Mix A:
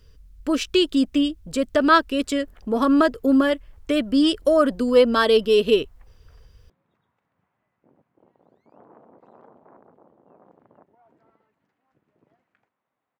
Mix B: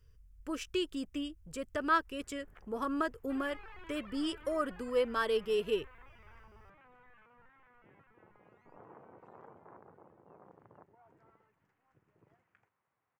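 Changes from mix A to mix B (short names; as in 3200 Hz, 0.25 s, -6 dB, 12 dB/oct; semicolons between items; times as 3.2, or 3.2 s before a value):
speech -11.0 dB; second sound: unmuted; master: add fifteen-band EQ 100 Hz +5 dB, 250 Hz -9 dB, 630 Hz -6 dB, 4000 Hz -10 dB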